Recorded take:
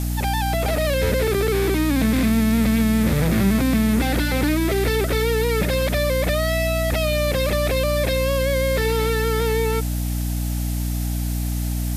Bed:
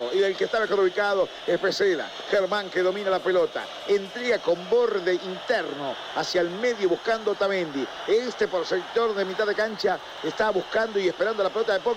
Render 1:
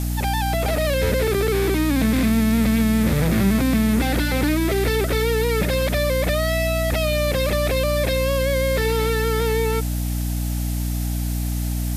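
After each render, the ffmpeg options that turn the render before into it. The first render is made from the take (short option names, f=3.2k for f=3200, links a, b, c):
-af anull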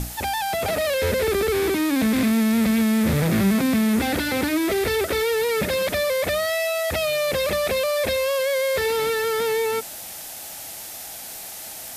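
-af "bandreject=f=60:t=h:w=6,bandreject=f=120:t=h:w=6,bandreject=f=180:t=h:w=6,bandreject=f=240:t=h:w=6,bandreject=f=300:t=h:w=6"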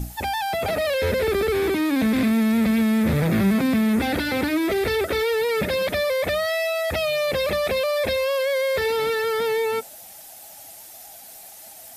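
-af "afftdn=nr=10:nf=-36"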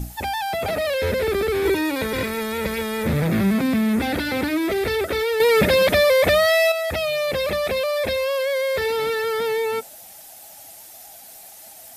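-filter_complex "[0:a]asettb=1/sr,asplit=3[a][b][c];[a]atrim=end=1.654[d];[b]atrim=start=1.65:end=3.07,asetpts=PTS-STARTPTS,afade=t=in:d=0.004:c=qsin,afade=t=out:st=1.416:d=0.004:c=qsin,aecho=1:1:2.1:0.95,atrim=end_sample=62622[e];[c]atrim=start=3.066[f];[d][e]acrossfade=d=0.004:c1=hsin:c2=qsin[g];[g][f]acrossfade=d=0.004:c1=qsin:c2=hsin,asettb=1/sr,asplit=3[h][i][j];[h]atrim=end=5.404[k];[i]atrim=start=5.4:end=6.72,asetpts=PTS-STARTPTS,afade=t=in:d=0.004:c=qsin,afade=t=out:st=1.316:d=0.004:c=qsin,acontrast=86[l];[j]atrim=start=6.716[m];[k][l]acrossfade=d=0.004:c1=hsin:c2=qsin[n];[n][m]acrossfade=d=0.004:c1=qsin:c2=hsin"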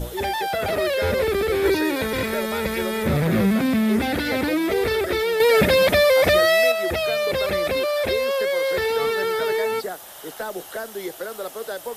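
-filter_complex "[1:a]volume=-7.5dB[a];[0:a][a]amix=inputs=2:normalize=0"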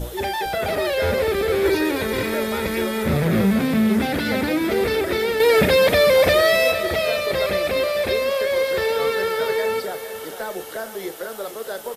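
-filter_complex "[0:a]asplit=2[a][b];[b]adelay=36,volume=-13dB[c];[a][c]amix=inputs=2:normalize=0,aecho=1:1:456|912|1368|1824|2280|2736:0.251|0.138|0.076|0.0418|0.023|0.0126"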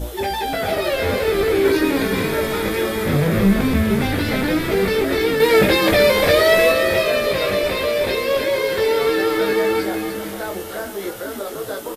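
-filter_complex "[0:a]asplit=2[a][b];[b]adelay=20,volume=-4dB[c];[a][c]amix=inputs=2:normalize=0,asplit=5[d][e][f][g][h];[e]adelay=299,afreqshift=-120,volume=-7dB[i];[f]adelay=598,afreqshift=-240,volume=-16.9dB[j];[g]adelay=897,afreqshift=-360,volume=-26.8dB[k];[h]adelay=1196,afreqshift=-480,volume=-36.7dB[l];[d][i][j][k][l]amix=inputs=5:normalize=0"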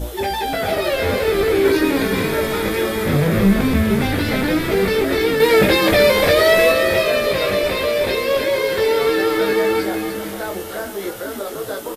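-af "volume=1dB,alimiter=limit=-3dB:level=0:latency=1"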